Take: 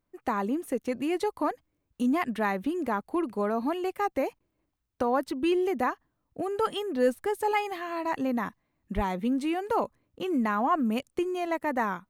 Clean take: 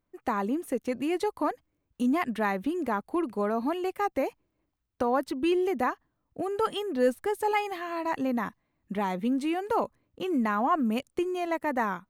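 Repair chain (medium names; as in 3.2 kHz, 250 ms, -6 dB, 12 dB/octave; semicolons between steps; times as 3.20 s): 8.95–9.07 s: high-pass 140 Hz 24 dB/octave; interpolate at 4.39 s, 11 ms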